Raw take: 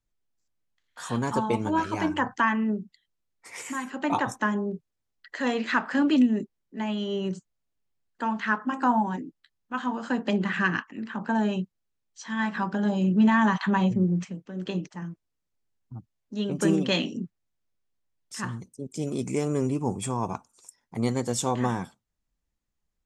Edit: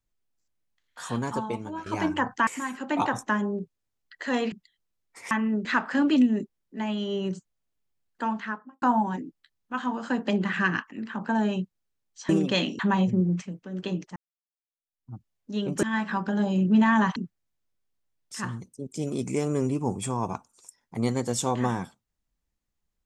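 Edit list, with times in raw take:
0:01.01–0:01.86: fade out, to −14.5 dB
0:02.47–0:02.81: swap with 0:03.60–0:05.65
0:08.23–0:08.82: fade out and dull
0:12.29–0:13.62: swap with 0:16.66–0:17.16
0:14.99–0:15.96: fade in exponential

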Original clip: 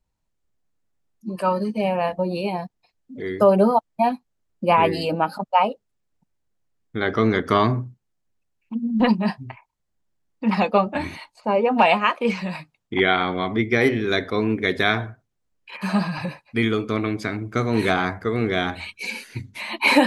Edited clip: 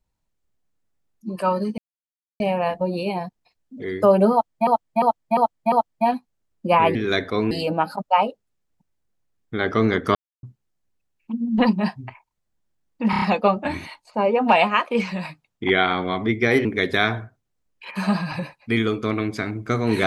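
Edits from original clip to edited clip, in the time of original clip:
0:01.78: splice in silence 0.62 s
0:03.70–0:04.05: repeat, 5 plays
0:07.57–0:07.85: silence
0:10.52: stutter 0.03 s, 5 plays
0:13.95–0:14.51: move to 0:04.93

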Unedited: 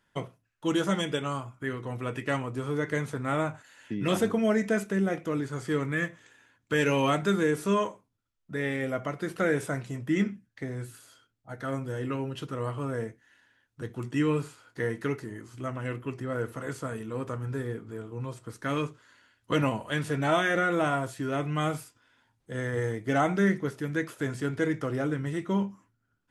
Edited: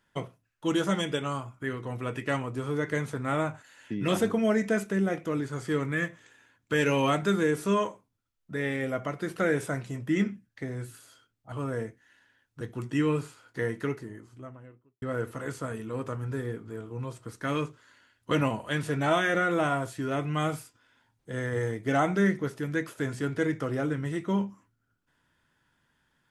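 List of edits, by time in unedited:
0:11.52–0:12.73: remove
0:14.88–0:16.23: fade out and dull

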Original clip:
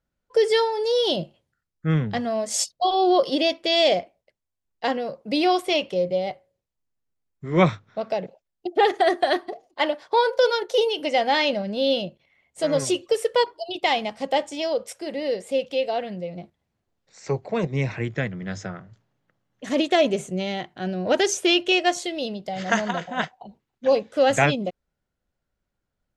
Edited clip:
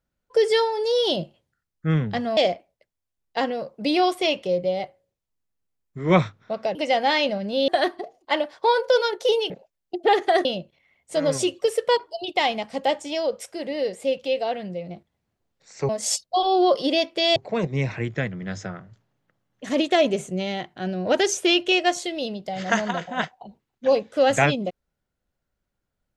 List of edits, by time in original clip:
0:02.37–0:03.84: move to 0:17.36
0:08.22–0:09.17: swap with 0:10.99–0:11.92

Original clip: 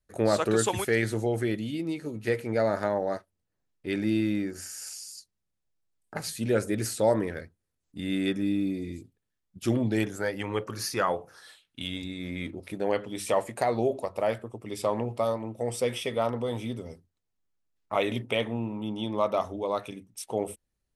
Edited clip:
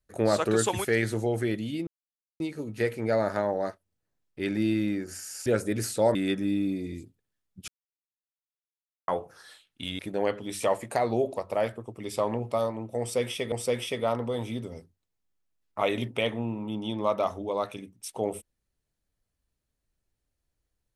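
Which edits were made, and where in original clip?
0:01.87: splice in silence 0.53 s
0:04.93–0:06.48: remove
0:07.17–0:08.13: remove
0:09.66–0:11.06: silence
0:11.97–0:12.65: remove
0:15.66–0:16.18: repeat, 2 plays

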